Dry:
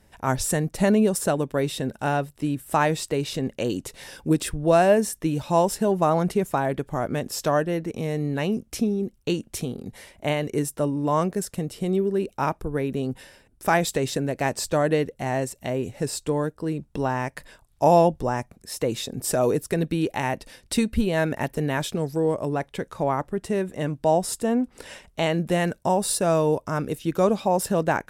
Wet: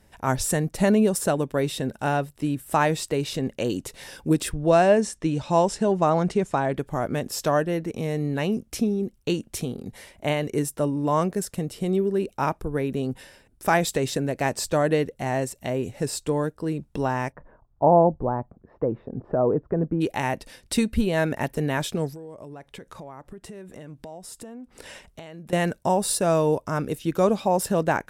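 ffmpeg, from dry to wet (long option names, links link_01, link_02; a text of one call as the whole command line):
ffmpeg -i in.wav -filter_complex "[0:a]asettb=1/sr,asplit=3[link_01][link_02][link_03];[link_01]atrim=end=4.524[link_04];[link_02]atrim=start=4.52:end=6.76,asetpts=PTS-STARTPTS,afade=type=in:duration=0.004:curve=qsin,afade=type=out:start_time=2.236:duration=0.004:curve=qsin,lowpass=frequency=8300:width=0.5412,lowpass=frequency=8300:width=1.3066[link_05];[link_03]atrim=start=6.756[link_06];[link_04][link_05]acrossfade=duration=0.004:curve1=hsin:curve2=qsin[link_07];[link_07][link_06]acrossfade=duration=0.004:curve1=qsin:curve2=hsin,asplit=3[link_08][link_09][link_10];[link_08]afade=type=out:start_time=17.31:duration=0.02[link_11];[link_09]lowpass=frequency=1200:width=0.5412,lowpass=frequency=1200:width=1.3066,afade=type=in:start_time=17.31:duration=0.02,afade=type=out:start_time=20:duration=0.02[link_12];[link_10]afade=type=in:start_time=20:duration=0.02[link_13];[link_11][link_12][link_13]amix=inputs=3:normalize=0,asettb=1/sr,asplit=3[link_14][link_15][link_16];[link_14]atrim=end=22.094[link_17];[link_15]atrim=start=22.09:end=25.53,asetpts=PTS-STARTPTS,afade=type=in:duration=0.004:curve=qsin,afade=type=out:start_time=3.436:duration=0.004:curve=qsin,acompressor=threshold=-37dB:ratio=8:attack=3.2:release=140:knee=1:detection=peak[link_18];[link_16]atrim=start=25.526[link_19];[link_17][link_18]acrossfade=duration=0.004:curve1=hsin:curve2=qsin[link_20];[link_20][link_19]acrossfade=duration=0.004:curve1=qsin:curve2=hsin" out.wav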